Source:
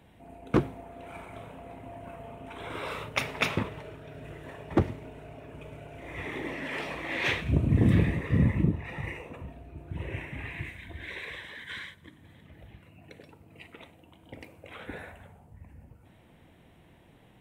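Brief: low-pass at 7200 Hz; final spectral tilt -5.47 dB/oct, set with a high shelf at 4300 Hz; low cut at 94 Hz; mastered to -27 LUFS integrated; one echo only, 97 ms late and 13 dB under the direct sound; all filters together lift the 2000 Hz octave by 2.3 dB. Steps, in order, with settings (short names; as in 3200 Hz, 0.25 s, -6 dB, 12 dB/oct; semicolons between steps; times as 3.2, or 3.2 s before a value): HPF 94 Hz; LPF 7200 Hz; bell 2000 Hz +4.5 dB; high shelf 4300 Hz -8.5 dB; echo 97 ms -13 dB; gain +4 dB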